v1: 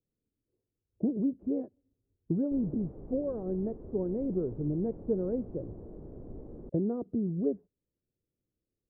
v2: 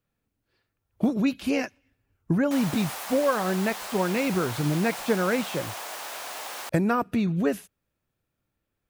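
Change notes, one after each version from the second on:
background: add resonant high-pass 730 Hz, resonance Q 1.7; master: remove four-pole ladder low-pass 510 Hz, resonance 40%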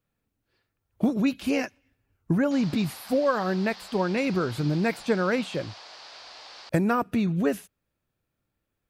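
background: add four-pole ladder low-pass 5.1 kHz, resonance 65%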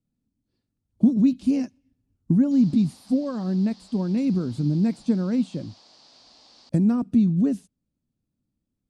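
master: add FFT filter 110 Hz 0 dB, 250 Hz +8 dB, 400 Hz -7 dB, 1.1 kHz -13 dB, 1.5 kHz -18 dB, 2.4 kHz -16 dB, 4.4 kHz -6 dB, 9.4 kHz -5 dB, 14 kHz -29 dB

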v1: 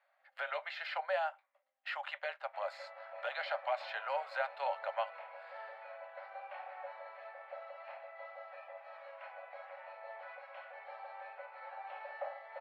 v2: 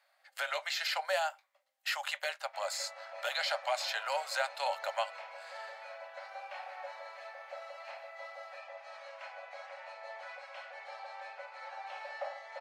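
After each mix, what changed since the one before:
master: remove distance through air 470 m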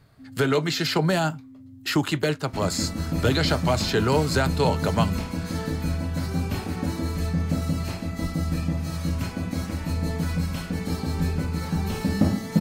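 speech +4.0 dB; second sound: remove tape spacing loss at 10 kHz 30 dB; master: remove rippled Chebyshev high-pass 540 Hz, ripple 6 dB

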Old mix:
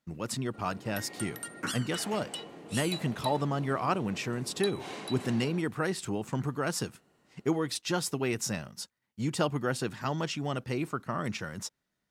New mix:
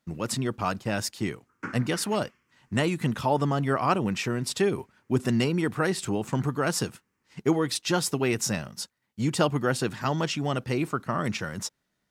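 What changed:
speech +5.0 dB; first sound: muted; second sound: add low-pass 5.8 kHz

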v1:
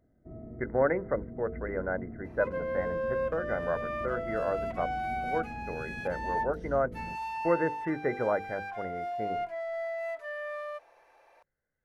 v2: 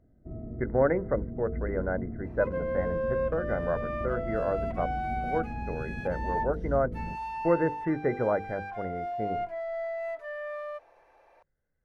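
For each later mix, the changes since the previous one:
master: add tilt EQ -2 dB/octave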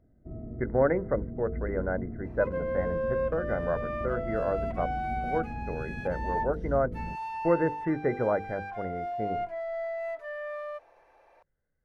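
reverb: off

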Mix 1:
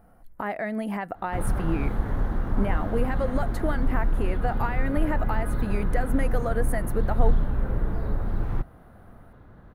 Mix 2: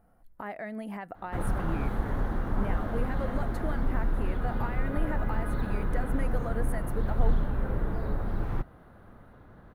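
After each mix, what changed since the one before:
speech -8.0 dB; background: add bass shelf 170 Hz -4.5 dB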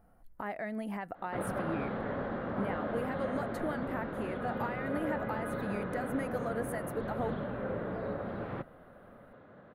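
background: add cabinet simulation 180–3800 Hz, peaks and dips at 330 Hz -3 dB, 560 Hz +7 dB, 900 Hz -4 dB

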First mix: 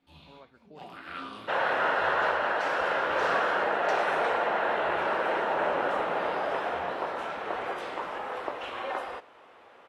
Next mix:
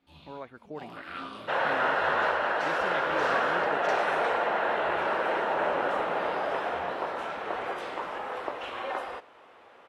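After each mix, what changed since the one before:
speech +11.5 dB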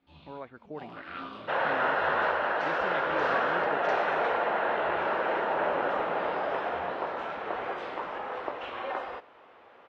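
master: add distance through air 140 m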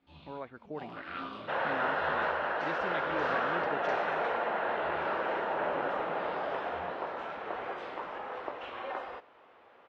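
second sound -4.0 dB

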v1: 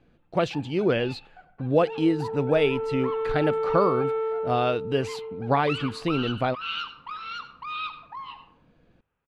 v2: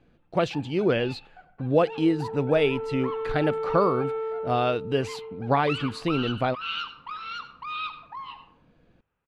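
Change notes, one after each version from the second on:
second sound -3.0 dB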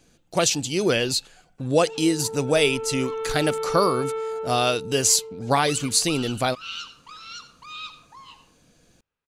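first sound -10.5 dB; master: remove distance through air 470 m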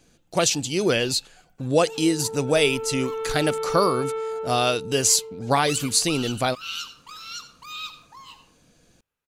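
first sound: remove distance through air 97 m

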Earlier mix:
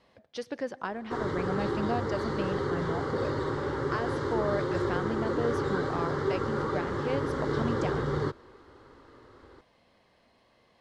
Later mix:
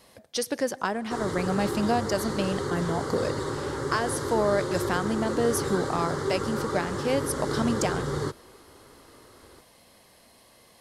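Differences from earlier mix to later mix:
speech +6.5 dB; master: remove low-pass 3.3 kHz 12 dB/octave

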